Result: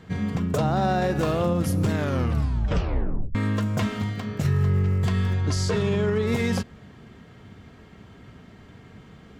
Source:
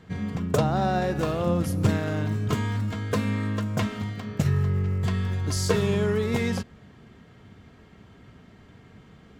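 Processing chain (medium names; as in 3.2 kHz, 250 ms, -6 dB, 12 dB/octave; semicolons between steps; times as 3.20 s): peak limiter -18 dBFS, peak gain reduction 9.5 dB; 1.95 s: tape stop 1.40 s; 5.33–6.27 s: distance through air 63 m; trim +3.5 dB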